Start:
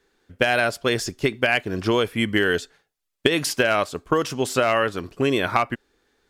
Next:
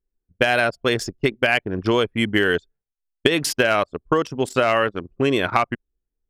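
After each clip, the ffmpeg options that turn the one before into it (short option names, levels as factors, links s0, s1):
-af "anlmdn=100,volume=1.19"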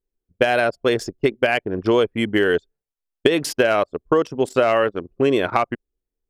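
-af "equalizer=f=470:w=0.72:g=7,volume=0.668"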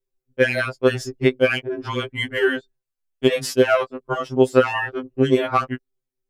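-af "afftfilt=real='re*2.45*eq(mod(b,6),0)':imag='im*2.45*eq(mod(b,6),0)':win_size=2048:overlap=0.75,volume=1.26"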